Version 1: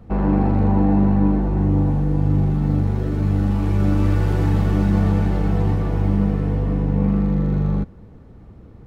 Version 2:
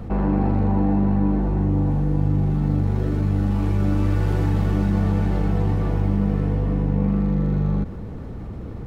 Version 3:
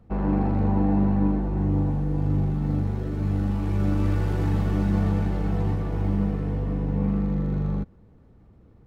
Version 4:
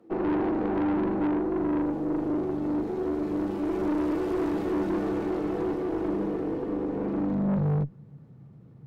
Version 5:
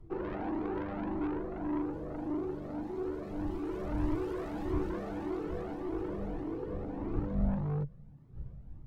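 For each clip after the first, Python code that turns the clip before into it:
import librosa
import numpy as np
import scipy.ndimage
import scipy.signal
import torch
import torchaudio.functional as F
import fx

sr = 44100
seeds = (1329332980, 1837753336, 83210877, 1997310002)

y1 = fx.env_flatten(x, sr, amount_pct=50)
y1 = y1 * librosa.db_to_amplitude(-4.0)
y2 = fx.upward_expand(y1, sr, threshold_db=-31.0, expansion=2.5)
y3 = fx.filter_sweep_highpass(y2, sr, from_hz=340.0, to_hz=140.0, start_s=7.12, end_s=7.76, q=7.0)
y3 = fx.tube_stage(y3, sr, drive_db=23.0, bias=0.45)
y4 = fx.dmg_wind(y3, sr, seeds[0], corner_hz=97.0, level_db=-37.0)
y4 = fx.comb_cascade(y4, sr, direction='rising', hz=1.7)
y4 = y4 * librosa.db_to_amplitude(-3.0)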